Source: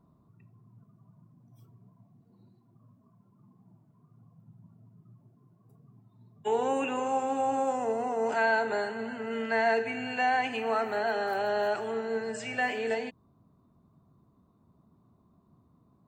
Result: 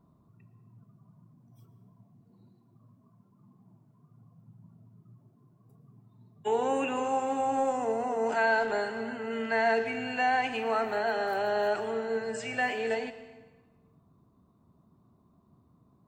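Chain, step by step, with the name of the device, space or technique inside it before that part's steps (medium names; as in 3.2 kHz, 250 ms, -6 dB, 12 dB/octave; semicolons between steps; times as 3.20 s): saturated reverb return (on a send at -12.5 dB: reverberation RT60 1.2 s, pre-delay 105 ms + saturation -26.5 dBFS, distortion -12 dB)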